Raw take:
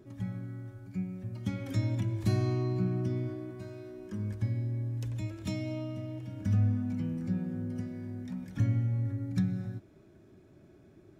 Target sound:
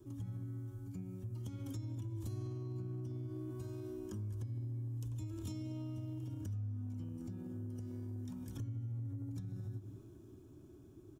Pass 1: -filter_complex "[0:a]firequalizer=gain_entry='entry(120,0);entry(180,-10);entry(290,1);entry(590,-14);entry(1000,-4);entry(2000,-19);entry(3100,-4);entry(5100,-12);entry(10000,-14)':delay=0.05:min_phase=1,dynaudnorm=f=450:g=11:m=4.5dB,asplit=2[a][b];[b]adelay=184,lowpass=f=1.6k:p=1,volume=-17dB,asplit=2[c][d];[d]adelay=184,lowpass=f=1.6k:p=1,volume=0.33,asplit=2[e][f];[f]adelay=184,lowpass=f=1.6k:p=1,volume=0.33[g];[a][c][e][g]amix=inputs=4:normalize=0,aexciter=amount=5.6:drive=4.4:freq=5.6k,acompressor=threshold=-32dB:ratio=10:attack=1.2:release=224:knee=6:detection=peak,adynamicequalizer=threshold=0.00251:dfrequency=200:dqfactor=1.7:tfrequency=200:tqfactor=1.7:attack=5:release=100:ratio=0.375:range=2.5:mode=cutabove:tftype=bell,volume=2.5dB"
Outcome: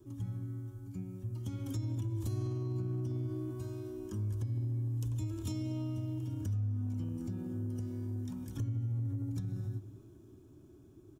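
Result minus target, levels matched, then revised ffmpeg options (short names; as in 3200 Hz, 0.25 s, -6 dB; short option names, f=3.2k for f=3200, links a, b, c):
compressor: peak gain reduction -7 dB
-filter_complex "[0:a]firequalizer=gain_entry='entry(120,0);entry(180,-10);entry(290,1);entry(590,-14);entry(1000,-4);entry(2000,-19);entry(3100,-4);entry(5100,-12);entry(10000,-14)':delay=0.05:min_phase=1,dynaudnorm=f=450:g=11:m=4.5dB,asplit=2[a][b];[b]adelay=184,lowpass=f=1.6k:p=1,volume=-17dB,asplit=2[c][d];[d]adelay=184,lowpass=f=1.6k:p=1,volume=0.33,asplit=2[e][f];[f]adelay=184,lowpass=f=1.6k:p=1,volume=0.33[g];[a][c][e][g]amix=inputs=4:normalize=0,aexciter=amount=5.6:drive=4.4:freq=5.6k,acompressor=threshold=-39.5dB:ratio=10:attack=1.2:release=224:knee=6:detection=peak,adynamicequalizer=threshold=0.00251:dfrequency=200:dqfactor=1.7:tfrequency=200:tqfactor=1.7:attack=5:release=100:ratio=0.375:range=2.5:mode=cutabove:tftype=bell,volume=2.5dB"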